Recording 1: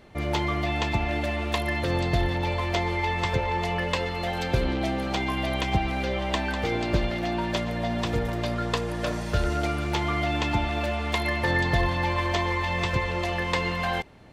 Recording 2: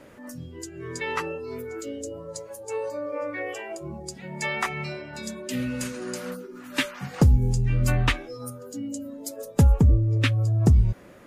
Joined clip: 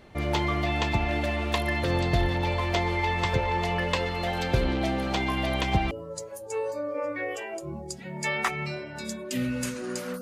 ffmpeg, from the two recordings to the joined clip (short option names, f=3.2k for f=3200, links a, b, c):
-filter_complex "[0:a]apad=whole_dur=10.21,atrim=end=10.21,atrim=end=5.912[a];[1:a]atrim=start=2.088:end=6.39[b];[a][b]acrossfade=d=0.004:c1=hsin:c2=hsin"